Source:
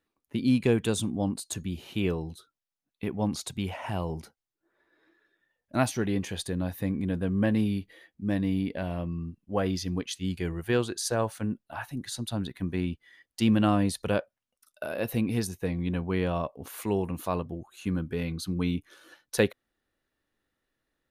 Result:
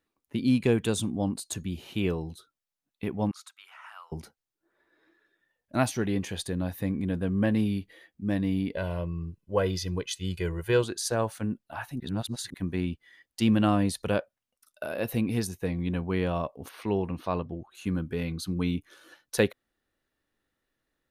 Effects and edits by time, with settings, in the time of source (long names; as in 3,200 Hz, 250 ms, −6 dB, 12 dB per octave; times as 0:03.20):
0:03.31–0:04.12: four-pole ladder high-pass 1,200 Hz, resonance 75%
0:08.73–0:10.84: comb filter 2 ms
0:12.00–0:12.54: reverse
0:16.69–0:17.75: Savitzky-Golay smoothing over 15 samples